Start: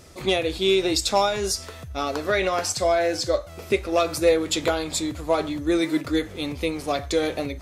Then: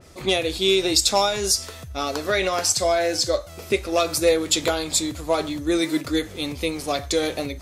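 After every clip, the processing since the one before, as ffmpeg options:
ffmpeg -i in.wav -af "adynamicequalizer=threshold=0.0112:dfrequency=3300:dqfactor=0.7:tfrequency=3300:tqfactor=0.7:attack=5:release=100:ratio=0.375:range=3.5:mode=boostabove:tftype=highshelf" out.wav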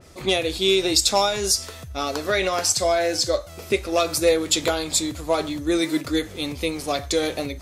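ffmpeg -i in.wav -af anull out.wav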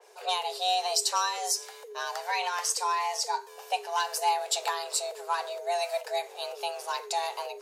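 ffmpeg -i in.wav -af "afreqshift=350,volume=-8dB" out.wav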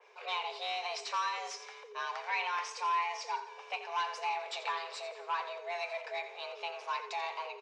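ffmpeg -i in.wav -filter_complex "[0:a]asoftclip=type=tanh:threshold=-25.5dB,highpass=420,equalizer=frequency=730:width_type=q:width=4:gain=-5,equalizer=frequency=1100:width_type=q:width=4:gain=6,equalizer=frequency=2300:width_type=q:width=4:gain=9,equalizer=frequency=4500:width_type=q:width=4:gain=-6,lowpass=frequency=5000:width=0.5412,lowpass=frequency=5000:width=1.3066,asplit=2[link_01][link_02];[link_02]aecho=0:1:86|172|258|344|430:0.237|0.114|0.0546|0.0262|0.0126[link_03];[link_01][link_03]amix=inputs=2:normalize=0,volume=-4dB" out.wav

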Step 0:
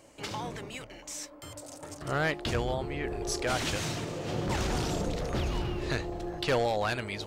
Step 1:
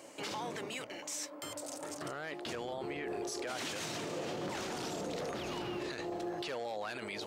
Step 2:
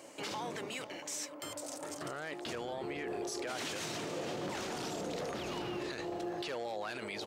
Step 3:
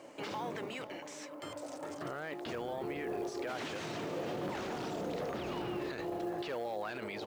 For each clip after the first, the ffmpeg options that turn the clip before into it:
ffmpeg -i in.wav -af "highpass=230,acompressor=threshold=-46dB:ratio=1.5,alimiter=level_in=11dB:limit=-24dB:level=0:latency=1:release=22,volume=-11dB,volume=4.5dB" out.wav
ffmpeg -i in.wav -af "aecho=1:1:500:0.15" out.wav
ffmpeg -i in.wav -filter_complex "[0:a]aemphasis=mode=reproduction:type=75kf,acrossover=split=4200[link_01][link_02];[link_02]acompressor=threshold=-50dB:ratio=4:attack=1:release=60[link_03];[link_01][link_03]amix=inputs=2:normalize=0,acrusher=bits=7:mode=log:mix=0:aa=0.000001,volume=1.5dB" out.wav

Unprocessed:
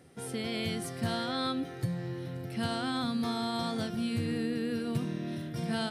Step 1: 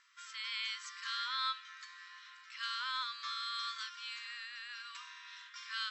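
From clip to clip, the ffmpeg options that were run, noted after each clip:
ffmpeg -i in.wav -af "afftfilt=real='re*between(b*sr/4096,960,7900)':imag='im*between(b*sr/4096,960,7900)':win_size=4096:overlap=0.75" out.wav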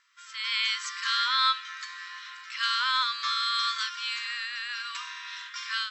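ffmpeg -i in.wav -af "dynaudnorm=framelen=260:gausssize=3:maxgain=12dB" out.wav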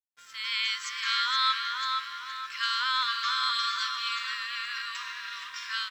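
ffmpeg -i in.wav -filter_complex "[0:a]asplit=2[link_01][link_02];[link_02]adelay=470,lowpass=frequency=3200:poles=1,volume=-3dB,asplit=2[link_03][link_04];[link_04]adelay=470,lowpass=frequency=3200:poles=1,volume=0.49,asplit=2[link_05][link_06];[link_06]adelay=470,lowpass=frequency=3200:poles=1,volume=0.49,asplit=2[link_07][link_08];[link_08]adelay=470,lowpass=frequency=3200:poles=1,volume=0.49,asplit=2[link_09][link_10];[link_10]adelay=470,lowpass=frequency=3200:poles=1,volume=0.49,asplit=2[link_11][link_12];[link_12]adelay=470,lowpass=frequency=3200:poles=1,volume=0.49[link_13];[link_01][link_03][link_05][link_07][link_09][link_11][link_13]amix=inputs=7:normalize=0,aeval=exprs='sgn(val(0))*max(abs(val(0))-0.00141,0)':channel_layout=same,volume=-1.5dB" out.wav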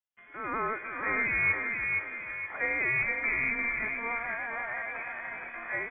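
ffmpeg -i in.wav -af "lowpass=frequency=3000:width_type=q:width=0.5098,lowpass=frequency=3000:width_type=q:width=0.6013,lowpass=frequency=3000:width_type=q:width=0.9,lowpass=frequency=3000:width_type=q:width=2.563,afreqshift=-3500,volume=1dB" out.wav

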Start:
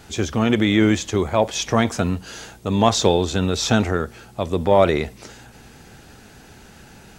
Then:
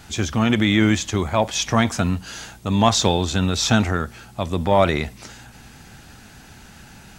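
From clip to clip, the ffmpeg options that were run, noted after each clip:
ffmpeg -i in.wav -af "equalizer=frequency=440:width=1.5:gain=-8,volume=2dB" out.wav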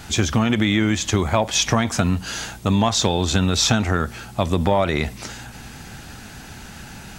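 ffmpeg -i in.wav -af "acompressor=threshold=-20dB:ratio=10,volume=6dB" out.wav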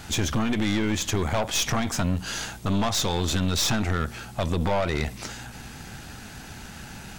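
ffmpeg -i in.wav -af "aeval=exprs='(tanh(10*val(0)+0.55)-tanh(0.55))/10':channel_layout=same" out.wav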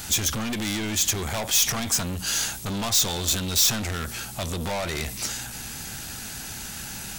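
ffmpeg -i in.wav -af "asoftclip=type=tanh:threshold=-25.5dB,crystalizer=i=3.5:c=0" out.wav

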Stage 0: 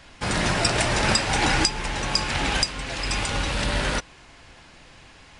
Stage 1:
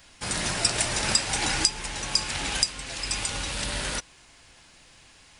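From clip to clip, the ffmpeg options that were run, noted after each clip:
ffmpeg -i in.wav -af "aemphasis=mode=production:type=75kf,volume=-8.5dB" out.wav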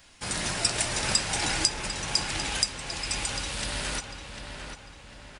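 ffmpeg -i in.wav -filter_complex "[0:a]asplit=2[link_01][link_02];[link_02]adelay=748,lowpass=frequency=3200:poles=1,volume=-6.5dB,asplit=2[link_03][link_04];[link_04]adelay=748,lowpass=frequency=3200:poles=1,volume=0.49,asplit=2[link_05][link_06];[link_06]adelay=748,lowpass=frequency=3200:poles=1,volume=0.49,asplit=2[link_07][link_08];[link_08]adelay=748,lowpass=frequency=3200:poles=1,volume=0.49,asplit=2[link_09][link_10];[link_10]adelay=748,lowpass=frequency=3200:poles=1,volume=0.49,asplit=2[link_11][link_12];[link_12]adelay=748,lowpass=frequency=3200:poles=1,volume=0.49[link_13];[link_01][link_03][link_05][link_07][link_09][link_11][link_13]amix=inputs=7:normalize=0,volume=-2dB" out.wav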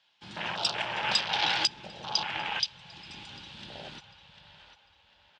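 ffmpeg -i in.wav -af "afwtdn=0.0282,highpass=190,equalizer=frequency=270:width_type=q:width=4:gain=-10,equalizer=frequency=390:width_type=q:width=4:gain=-4,equalizer=frequency=870:width_type=q:width=4:gain=9,equalizer=frequency=1600:width_type=q:width=4:gain=5,equalizer=frequency=3300:width_type=q:width=4:gain=3,lowpass=frequency=4000:width=0.5412,lowpass=frequency=4000:width=1.3066,aexciter=amount=3.8:drive=2.7:freq=2700,volume=-2dB" out.wav

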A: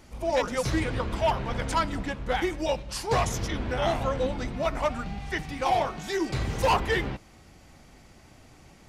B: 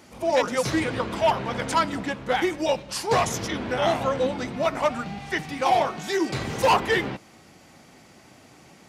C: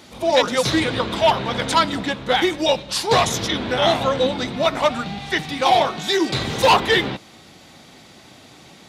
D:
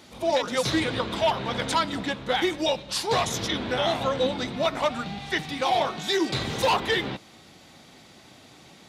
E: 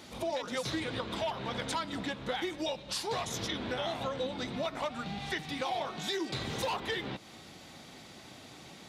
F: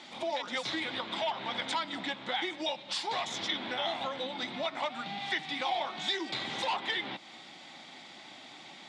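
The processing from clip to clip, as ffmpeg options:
ffmpeg -i in.wav -af "highpass=150,volume=4dB" out.wav
ffmpeg -i in.wav -af "equalizer=frequency=3700:width_type=o:width=0.44:gain=11,volume=4.5dB" out.wav
ffmpeg -i in.wav -af "alimiter=limit=-8.5dB:level=0:latency=1:release=179,volume=-5dB" out.wav
ffmpeg -i in.wav -af "acompressor=threshold=-35dB:ratio=3" out.wav
ffmpeg -i in.wav -af "highpass=250,equalizer=frequency=450:width_type=q:width=4:gain=-9,equalizer=frequency=830:width_type=q:width=4:gain=5,equalizer=frequency=2100:width_type=q:width=4:gain=6,equalizer=frequency=3400:width_type=q:width=4:gain=6,equalizer=frequency=6200:width_type=q:width=4:gain=-4,lowpass=frequency=7800:width=0.5412,lowpass=frequency=7800:width=1.3066" out.wav

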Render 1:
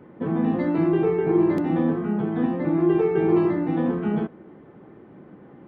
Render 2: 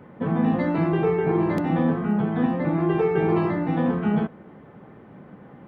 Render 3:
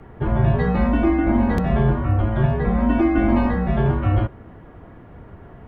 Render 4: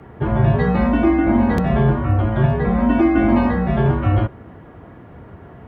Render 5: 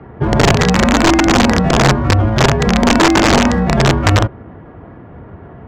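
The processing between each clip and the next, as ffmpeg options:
ffmpeg -i in.wav -af "equalizer=frequency=340:width_type=o:width=0.62:gain=-9,volume=4dB" out.wav
ffmpeg -i in.wav -af "afreqshift=-110,volume=4dB" out.wav
ffmpeg -i in.wav -af "highpass=67,volume=3dB" out.wav
ffmpeg -i in.wav -af "aresample=16000,aeval=exprs='(mod(2.82*val(0)+1,2)-1)/2.82':channel_layout=same,aresample=44100,adynamicsmooth=sensitivity=5.5:basefreq=2600,volume=5dB" out.wav

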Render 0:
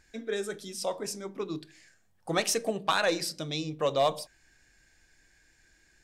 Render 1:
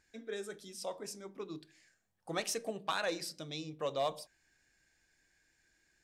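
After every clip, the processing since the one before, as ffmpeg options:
ffmpeg -i in.wav -af "lowshelf=frequency=63:gain=-9.5,volume=-8.5dB" out.wav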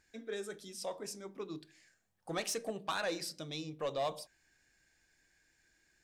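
ffmpeg -i in.wav -af "asoftclip=type=tanh:threshold=-28.5dB,volume=1dB" out.wav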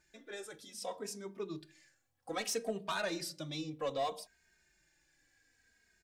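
ffmpeg -i in.wav -filter_complex "[0:a]asplit=2[link_01][link_02];[link_02]adelay=2.9,afreqshift=-0.63[link_03];[link_01][link_03]amix=inputs=2:normalize=1,volume=3dB" out.wav

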